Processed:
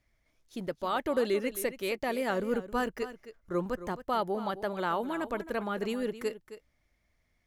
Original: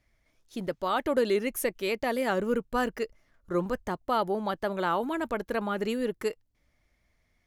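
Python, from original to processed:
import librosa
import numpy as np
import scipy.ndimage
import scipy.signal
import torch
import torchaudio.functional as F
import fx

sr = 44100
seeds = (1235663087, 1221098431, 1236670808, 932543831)

y = x + 10.0 ** (-13.5 / 20.0) * np.pad(x, (int(266 * sr / 1000.0), 0))[:len(x)]
y = y * librosa.db_to_amplitude(-3.0)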